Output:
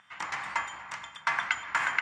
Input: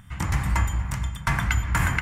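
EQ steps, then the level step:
band-pass filter 790–6,800 Hz
high-frequency loss of the air 70 metres
0.0 dB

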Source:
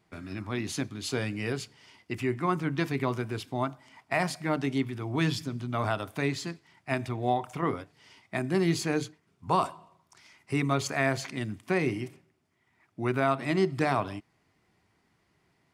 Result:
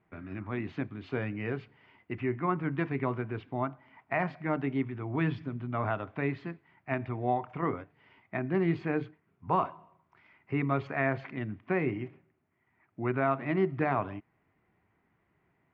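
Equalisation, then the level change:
low-pass filter 2,400 Hz 24 dB per octave
−2.0 dB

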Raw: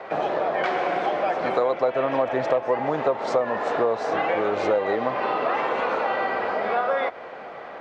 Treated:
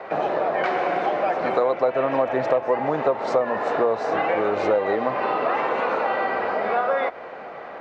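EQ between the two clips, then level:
high-shelf EQ 4,400 Hz −5.5 dB
mains-hum notches 60/120 Hz
notch filter 3,300 Hz, Q 17
+1.5 dB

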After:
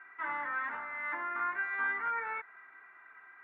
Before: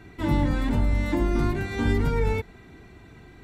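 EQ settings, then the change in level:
flat-topped band-pass 1,500 Hz, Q 1.8
high-frequency loss of the air 480 metres
+8.5 dB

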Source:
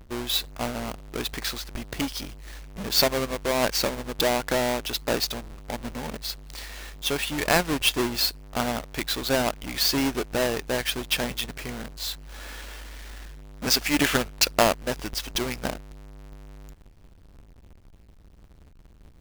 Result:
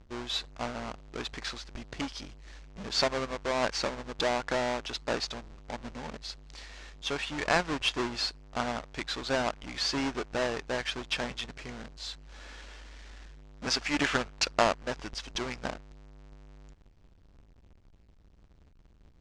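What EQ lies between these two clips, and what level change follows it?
low-pass filter 7,100 Hz 24 dB per octave
dynamic equaliser 1,200 Hz, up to +5 dB, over −38 dBFS, Q 0.76
−7.5 dB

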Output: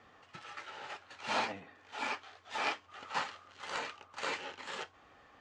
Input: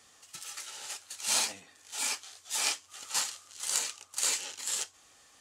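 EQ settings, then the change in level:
low-pass filter 1,800 Hz 12 dB per octave
high-frequency loss of the air 55 metres
+6.0 dB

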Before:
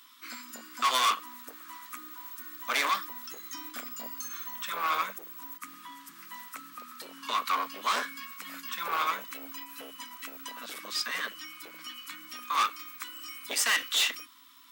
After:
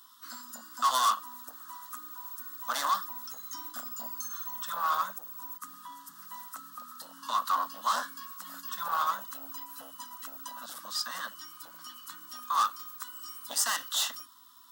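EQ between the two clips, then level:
phaser with its sweep stopped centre 960 Hz, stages 4
+1.5 dB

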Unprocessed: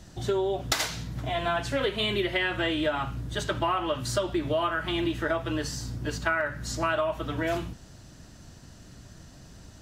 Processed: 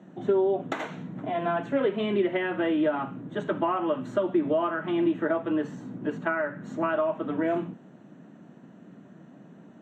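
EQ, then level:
moving average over 9 samples
Butterworth high-pass 180 Hz 36 dB per octave
spectral tilt −3 dB per octave
0.0 dB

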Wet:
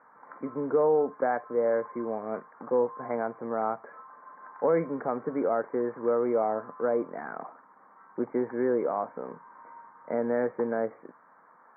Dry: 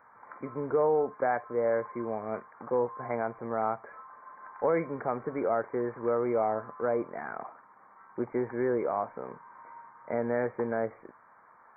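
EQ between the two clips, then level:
loudspeaker in its box 170–2,000 Hz, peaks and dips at 170 Hz +6 dB, 270 Hz +6 dB, 490 Hz +3 dB
0.0 dB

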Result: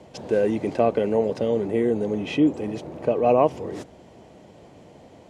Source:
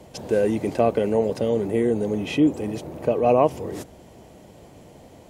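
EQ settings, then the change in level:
high-frequency loss of the air 69 metres
low-shelf EQ 68 Hz −11 dB
0.0 dB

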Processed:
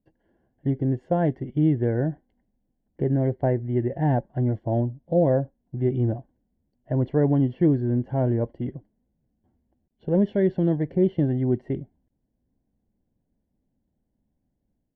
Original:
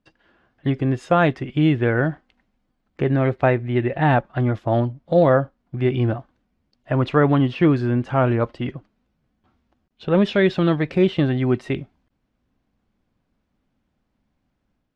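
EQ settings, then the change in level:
moving average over 35 samples
−2.5 dB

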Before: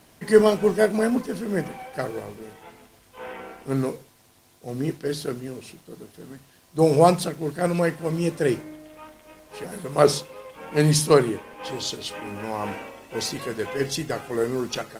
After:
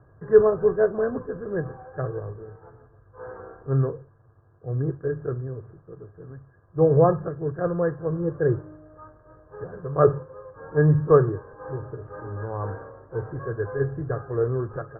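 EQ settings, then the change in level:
Chebyshev low-pass with heavy ripple 1,700 Hz, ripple 9 dB
low shelf with overshoot 160 Hz +10 dB, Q 3
+2.5 dB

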